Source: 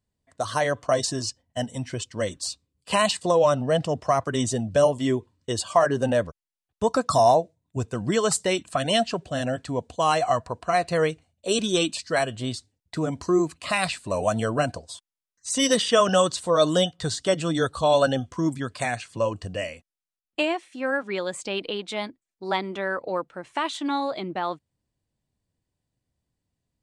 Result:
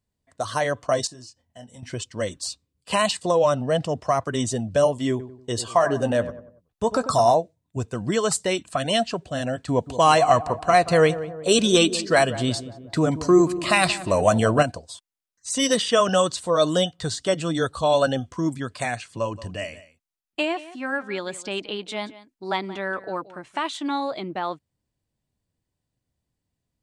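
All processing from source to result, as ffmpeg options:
ffmpeg -i in.wav -filter_complex "[0:a]asettb=1/sr,asplit=3[link_01][link_02][link_03];[link_01]atrim=end=1.074[link_04];[link_02]atrim=start=1.07:end=1.83,asetpts=PTS-STARTPTS,afade=type=in:duration=0.004:curve=qsin,afade=type=out:start_time=0.756:duration=0.004:curve=qsin,highpass=47,acompressor=threshold=-46dB:ratio=3:attack=3.2:release=140:knee=1:detection=peak,asplit=2[link_05][link_06];[link_06]adelay=24,volume=-8dB[link_07];[link_05][link_07]amix=inputs=2:normalize=0,atrim=end_sample=33516[link_08];[link_03]atrim=start=1.826[link_09];[link_04][link_08]acrossfade=duration=0.004:curve1=hsin:curve2=qsin[link_10];[link_10][link_09]acrossfade=duration=0.004:curve1=qsin:curve2=hsin,asettb=1/sr,asplit=3[link_11][link_12][link_13];[link_11]atrim=end=5.104[link_14];[link_12]atrim=start=5.1:end=7.35,asetpts=PTS-STARTPTS,afade=type=in:duration=0.004:curve=qsin,afade=type=out:start_time=2.246:duration=0.004:curve=qsin,asplit=2[link_15][link_16];[link_16]adelay=17,volume=-13.5dB[link_17];[link_15][link_17]amix=inputs=2:normalize=0,atrim=end_sample=99225,asplit=2[link_18][link_19];[link_19]adelay=95,lowpass=frequency=1400:poles=1,volume=-11.5dB,asplit=2[link_20][link_21];[link_21]adelay=95,lowpass=frequency=1400:poles=1,volume=0.43,asplit=2[link_22][link_23];[link_23]adelay=95,lowpass=frequency=1400:poles=1,volume=0.43,asplit=2[link_24][link_25];[link_25]adelay=95,lowpass=frequency=1400:poles=1,volume=0.43[link_26];[link_18][link_20][link_22][link_24][link_26]amix=inputs=5:normalize=0,atrim=end_sample=99225[link_27];[link_13]atrim=start=7.346[link_28];[link_14][link_27]acrossfade=duration=0.004:curve1=hsin:curve2=qsin[link_29];[link_29][link_28]acrossfade=duration=0.004:curve1=qsin:curve2=hsin,asettb=1/sr,asplit=3[link_30][link_31][link_32];[link_30]atrim=end=9.684[link_33];[link_31]atrim=start=9.68:end=14.63,asetpts=PTS-STARTPTS,afade=type=in:duration=0.004:curve=qsin,afade=type=out:start_time=4.946:duration=0.004:curve=qsin,acontrast=45,asplit=2[link_34][link_35];[link_35]adelay=181,lowpass=frequency=1100:poles=1,volume=-13dB,asplit=2[link_36][link_37];[link_37]adelay=181,lowpass=frequency=1100:poles=1,volume=0.55,asplit=2[link_38][link_39];[link_39]adelay=181,lowpass=frequency=1100:poles=1,volume=0.55,asplit=2[link_40][link_41];[link_41]adelay=181,lowpass=frequency=1100:poles=1,volume=0.55,asplit=2[link_42][link_43];[link_43]adelay=181,lowpass=frequency=1100:poles=1,volume=0.55,asplit=2[link_44][link_45];[link_45]adelay=181,lowpass=frequency=1100:poles=1,volume=0.55[link_46];[link_34][link_36][link_38][link_40][link_42][link_44][link_46]amix=inputs=7:normalize=0,atrim=end_sample=218295[link_47];[link_32]atrim=start=14.626[link_48];[link_33][link_47]acrossfade=duration=0.004:curve1=hsin:curve2=qsin[link_49];[link_49][link_48]acrossfade=duration=0.004:curve1=qsin:curve2=hsin,asettb=1/sr,asplit=3[link_50][link_51][link_52];[link_50]atrim=end=19.194[link_53];[link_51]atrim=start=19.19:end=23.68,asetpts=PTS-STARTPTS,afade=type=in:duration=0.004:curve=qsin,afade=type=out:start_time=4.486:duration=0.004:curve=qsin,bandreject=frequency=510:width=6.1,aecho=1:1:177:0.141,atrim=end_sample=198009[link_54];[link_52]atrim=start=23.676[link_55];[link_53][link_54]acrossfade=duration=0.004:curve1=hsin:curve2=qsin[link_56];[link_56][link_55]acrossfade=duration=0.004:curve1=qsin:curve2=hsin" out.wav

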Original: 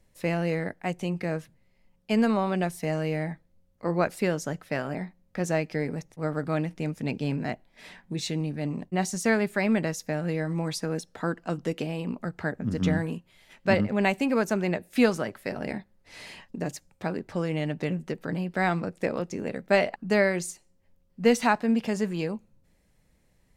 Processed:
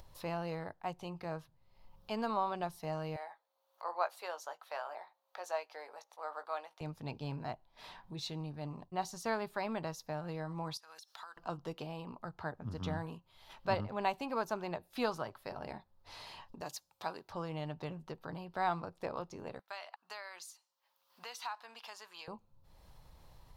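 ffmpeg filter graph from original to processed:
ffmpeg -i in.wav -filter_complex "[0:a]asettb=1/sr,asplit=3[link_01][link_02][link_03];[link_01]atrim=end=3.164[link_04];[link_02]atrim=start=3.16:end=6.81,asetpts=PTS-STARTPTS,afade=type=in:duration=0.004:curve=qsin,afade=type=out:start_time=3.646:duration=0.004:curve=qsin,highpass=frequency=560:width=0.5412,highpass=frequency=560:width=1.3066,bandreject=frequency=5100:width=13,asplit=2[link_05][link_06];[link_06]adelay=17,volume=-11dB[link_07];[link_05][link_07]amix=inputs=2:normalize=0,atrim=end_sample=160965[link_08];[link_03]atrim=start=6.806[link_09];[link_04][link_08]acrossfade=duration=0.004:curve1=hsin:curve2=qsin[link_10];[link_10][link_09]acrossfade=duration=0.004:curve1=qsin:curve2=hsin,asettb=1/sr,asplit=3[link_11][link_12][link_13];[link_11]atrim=end=10.774[link_14];[link_12]atrim=start=10.77:end=11.37,asetpts=PTS-STARTPTS,afade=type=in:duration=0.004:curve=qsin,afade=type=out:start_time=0.596:duration=0.004:curve=qsin,highpass=1100,highshelf=frequency=2000:gain=11.5,acompressor=threshold=-43dB:ratio=10:attack=3.2:release=140:knee=1:detection=peak[link_15];[link_13]atrim=start=11.366[link_16];[link_14][link_15]acrossfade=duration=0.004:curve1=hsin:curve2=qsin[link_17];[link_17][link_16]acrossfade=duration=0.004:curve1=qsin:curve2=hsin,asettb=1/sr,asplit=3[link_18][link_19][link_20];[link_18]atrim=end=16.614[link_21];[link_19]atrim=start=16.61:end=17.3,asetpts=PTS-STARTPTS,afade=type=in:duration=0.004:curve=qsin,afade=type=out:start_time=0.686:duration=0.004:curve=qsin,highpass=frequency=370:poles=1,highshelf=frequency=2700:gain=10[link_22];[link_20]atrim=start=17.296[link_23];[link_21][link_22]acrossfade=duration=0.004:curve1=hsin:curve2=qsin[link_24];[link_24][link_23]acrossfade=duration=0.004:curve1=qsin:curve2=hsin,asettb=1/sr,asplit=3[link_25][link_26][link_27];[link_25]atrim=end=19.594[link_28];[link_26]atrim=start=19.59:end=22.28,asetpts=PTS-STARTPTS,afade=type=in:duration=0.004:curve=qsin,afade=type=out:start_time=2.686:duration=0.004:curve=qsin,highpass=1300,acompressor=threshold=-31dB:ratio=3:attack=3.2:release=140:knee=1:detection=peak[link_29];[link_27]atrim=start=22.276[link_30];[link_28][link_29]acrossfade=duration=0.004:curve1=hsin:curve2=qsin[link_31];[link_31][link_30]acrossfade=duration=0.004:curve1=qsin:curve2=hsin,equalizer=frequency=190:width_type=o:width=0.21:gain=-8,acompressor=mode=upward:threshold=-34dB:ratio=2.5,equalizer=frequency=250:width_type=o:width=1:gain=-9,equalizer=frequency=500:width_type=o:width=1:gain=-5,equalizer=frequency=1000:width_type=o:width=1:gain=10,equalizer=frequency=2000:width_type=o:width=1:gain=-12,equalizer=frequency=4000:width_type=o:width=1:gain=5,equalizer=frequency=8000:width_type=o:width=1:gain=-11,volume=-7dB" out.wav

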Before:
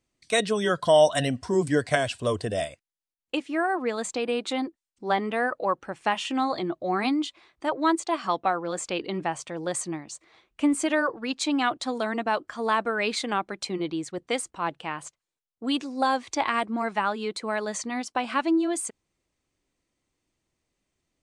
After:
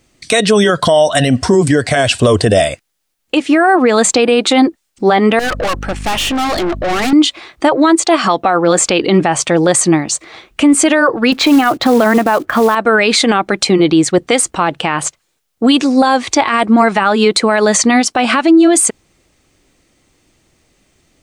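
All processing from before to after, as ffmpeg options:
ffmpeg -i in.wav -filter_complex "[0:a]asettb=1/sr,asplit=3[link_01][link_02][link_03];[link_01]atrim=end=5.394[link_04];[link_02]atrim=start=5.39:end=7.13,asetpts=PTS-STARTPTS,afade=type=in:duration=0.004:curve=qsin,afade=type=out:start_time=1.736:duration=0.004:curve=qsin,highpass=frequency=180:poles=1,aeval=exprs='val(0)+0.00562*(sin(2*PI*50*n/s)+sin(2*PI*2*50*n/s)/2+sin(2*PI*3*50*n/s)/3+sin(2*PI*4*50*n/s)/4+sin(2*PI*5*50*n/s)/5)':channel_layout=same,aeval=exprs='(tanh(70.8*val(0)+0.35)-tanh(0.35))/70.8':channel_layout=same[link_05];[link_03]atrim=start=7.126[link_06];[link_04][link_05]acrossfade=duration=0.004:curve1=hsin:curve2=qsin[link_07];[link_07][link_06]acrossfade=duration=0.004:curve1=qsin:curve2=hsin,asettb=1/sr,asplit=3[link_08][link_09][link_10];[link_08]atrim=end=11.324[link_11];[link_09]atrim=start=11.32:end=12.75,asetpts=PTS-STARTPTS,afade=type=in:duration=0.004:curve=qsin,afade=type=out:start_time=1.426:duration=0.004:curve=qsin,lowpass=2300,acontrast=68,acrusher=bits=5:mode=log:mix=0:aa=0.000001[link_12];[link_10]atrim=start=12.746[link_13];[link_11][link_12]acrossfade=duration=0.004:curve1=hsin:curve2=qsin[link_14];[link_14][link_13]acrossfade=duration=0.004:curve1=qsin:curve2=hsin,bandreject=frequency=1000:width=13,acompressor=threshold=-26dB:ratio=5,alimiter=level_in=24dB:limit=-1dB:release=50:level=0:latency=1,volume=-1dB" out.wav

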